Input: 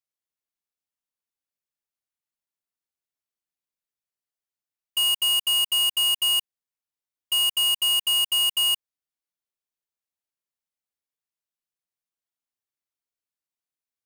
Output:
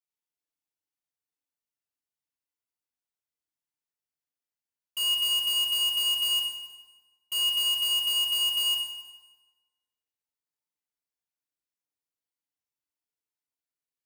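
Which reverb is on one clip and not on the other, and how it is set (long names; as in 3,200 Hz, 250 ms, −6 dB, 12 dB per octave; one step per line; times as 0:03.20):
feedback delay network reverb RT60 1.3 s, low-frequency decay 1×, high-frequency decay 0.8×, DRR −3 dB
level −8 dB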